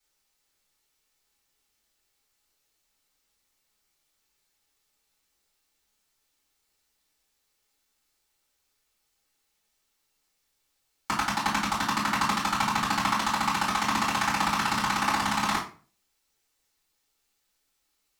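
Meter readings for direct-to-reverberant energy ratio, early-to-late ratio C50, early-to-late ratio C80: −10.5 dB, 7.0 dB, 12.5 dB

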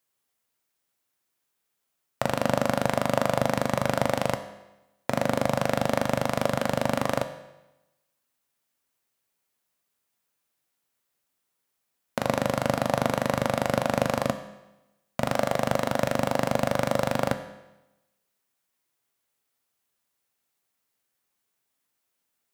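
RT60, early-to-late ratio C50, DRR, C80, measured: 1.0 s, 11.0 dB, 8.5 dB, 13.0 dB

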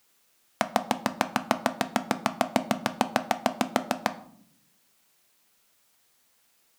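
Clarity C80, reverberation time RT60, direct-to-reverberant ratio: 19.0 dB, non-exponential decay, 10.0 dB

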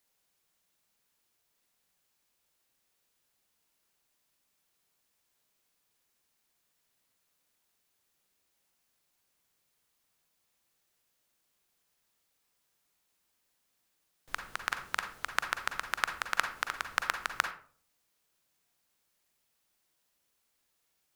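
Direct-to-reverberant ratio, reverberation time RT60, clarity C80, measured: 6.5 dB, 0.45 s, 13.5 dB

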